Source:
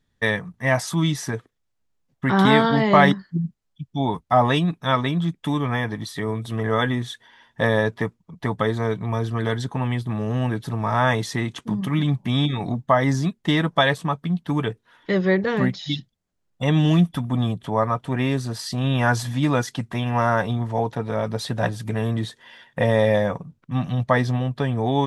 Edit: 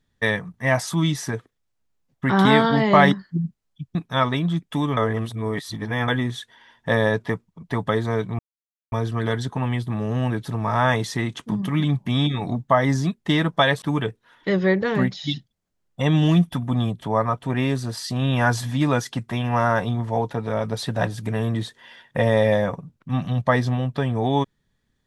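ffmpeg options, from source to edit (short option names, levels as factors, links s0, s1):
-filter_complex "[0:a]asplit=6[s0][s1][s2][s3][s4][s5];[s0]atrim=end=3.952[s6];[s1]atrim=start=4.668:end=5.692[s7];[s2]atrim=start=5.688:end=6.802,asetpts=PTS-STARTPTS,areverse[s8];[s3]atrim=start=6.798:end=9.11,asetpts=PTS-STARTPTS,afade=t=out:st=2.308:d=0.004:c=hsin,apad=pad_dur=0.53[s9];[s4]atrim=start=9.11:end=14.012,asetpts=PTS-STARTPTS,afade=t=in:d=0.004:c=hsin[s10];[s5]atrim=start=14.438[s11];[s6][s7]acrossfade=d=0.004:c1=hsin:c2=hsin[s12];[s12][s8]acrossfade=d=0.004:c1=hsin:c2=hsin[s13];[s9][s10]concat=n=2:v=0:a=1[s14];[s13][s14]acrossfade=d=0.004:c1=hsin:c2=hsin[s15];[s15][s11]acrossfade=d=0.004:c1=hsin:c2=hsin"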